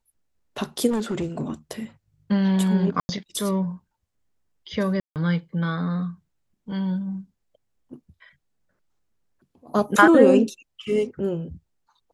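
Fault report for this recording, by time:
0:00.90–0:01.50: clipping −21 dBFS
0:03.00–0:03.09: drop-out 90 ms
0:05.00–0:05.16: drop-out 158 ms

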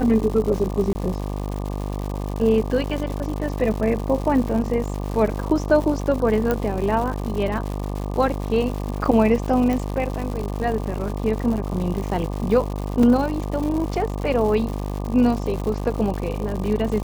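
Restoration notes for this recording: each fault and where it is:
mains buzz 50 Hz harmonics 24 −27 dBFS
surface crackle 210 per second −28 dBFS
0:00.93–0:00.95: drop-out 20 ms
0:06.51: click −9 dBFS
0:09.73: click
0:13.03: drop-out 3.4 ms

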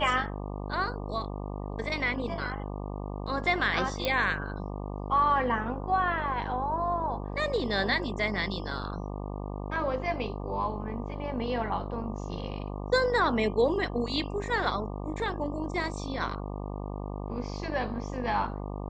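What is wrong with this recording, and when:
mains buzz 50 Hz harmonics 24 −36 dBFS
0:04.05: click −14 dBFS

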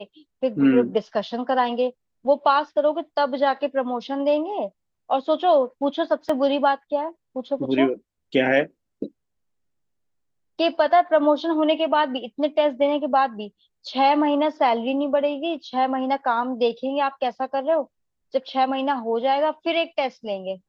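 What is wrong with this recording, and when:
0:06.29: drop-out 4.5 ms

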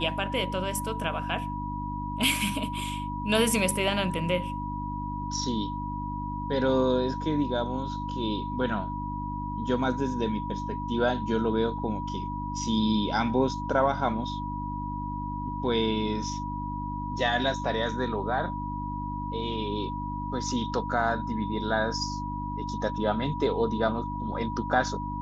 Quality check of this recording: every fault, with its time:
mains hum 50 Hz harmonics 6 −35 dBFS
whistle 970 Hz −34 dBFS

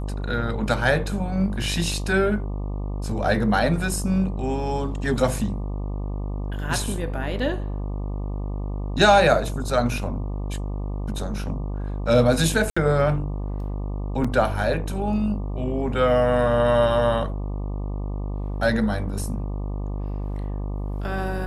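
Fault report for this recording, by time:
mains buzz 50 Hz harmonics 24 −28 dBFS
0:12.70–0:12.77: drop-out 65 ms
0:14.24: drop-out 4.9 ms

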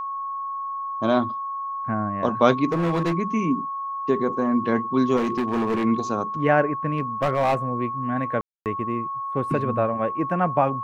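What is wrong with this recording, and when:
whistle 1,100 Hz −27 dBFS
0:02.66–0:03.14: clipping −19 dBFS
0:05.16–0:05.85: clipping −19.5 dBFS
0:06.93–0:07.55: clipping −16 dBFS
0:08.41–0:08.66: drop-out 248 ms

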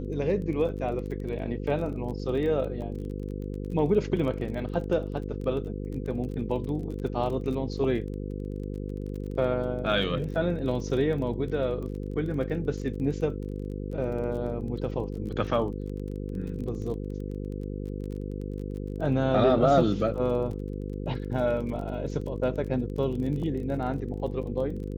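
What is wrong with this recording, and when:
mains buzz 50 Hz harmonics 10 −34 dBFS
surface crackle 24 per second −36 dBFS

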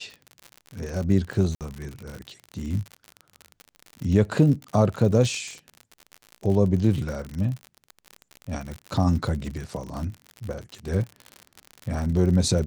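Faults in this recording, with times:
surface crackle 65 per second −30 dBFS
0:01.55–0:01.61: drop-out 58 ms

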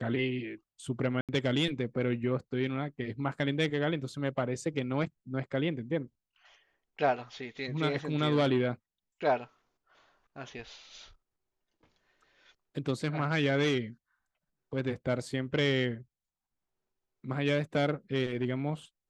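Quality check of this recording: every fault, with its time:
0:01.21–0:01.29: drop-out 77 ms

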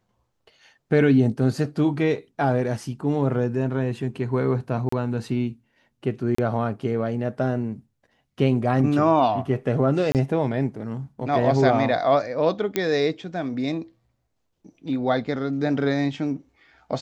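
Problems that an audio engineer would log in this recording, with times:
0:04.89–0:04.92: drop-out 34 ms
0:06.35–0:06.38: drop-out 34 ms
0:10.12–0:10.15: drop-out 28 ms
0:12.76: click −8 dBFS

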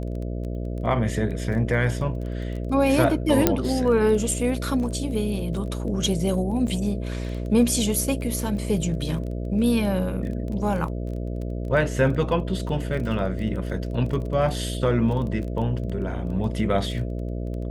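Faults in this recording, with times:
mains buzz 60 Hz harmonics 11 −29 dBFS
surface crackle 15 per second −31 dBFS
0:03.47: click −2 dBFS
0:06.67: drop-out 2.6 ms

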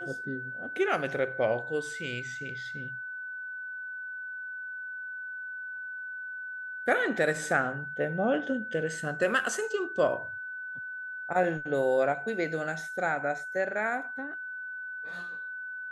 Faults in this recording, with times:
whistle 1,500 Hz −36 dBFS

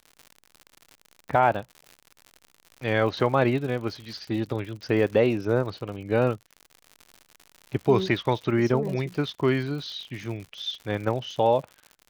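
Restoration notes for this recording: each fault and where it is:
surface crackle 99 per second −35 dBFS

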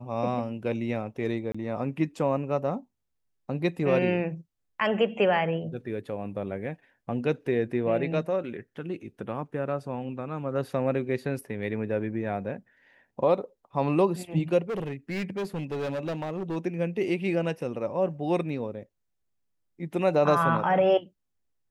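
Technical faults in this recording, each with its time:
0:01.52–0:01.54: drop-out 25 ms
0:14.62–0:16.57: clipping −27.5 dBFS

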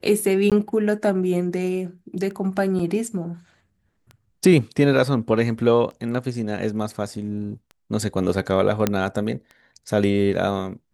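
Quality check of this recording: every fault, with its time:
scratch tick 33 1/3 rpm −26 dBFS
0:00.50–0:00.52: drop-out 17 ms
0:02.79: drop-out 3.8 ms
0:08.87: click −5 dBFS

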